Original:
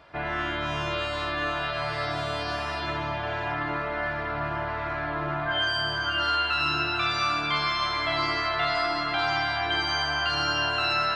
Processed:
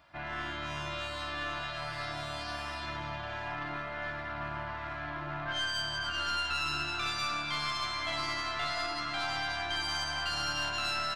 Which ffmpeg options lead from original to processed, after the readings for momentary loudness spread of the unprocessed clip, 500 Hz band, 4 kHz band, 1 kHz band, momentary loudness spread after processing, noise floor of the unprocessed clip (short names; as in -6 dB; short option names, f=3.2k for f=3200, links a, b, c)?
6 LU, -10.5 dB, -6.0 dB, -8.5 dB, 6 LU, -31 dBFS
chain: -af "equalizer=f=440:w=3.8:g=-14.5,aecho=1:1:177:0.211,aeval=exprs='(tanh(8.91*val(0)+0.55)-tanh(0.55))/8.91':c=same,highshelf=f=7.3k:g=10,volume=-5.5dB"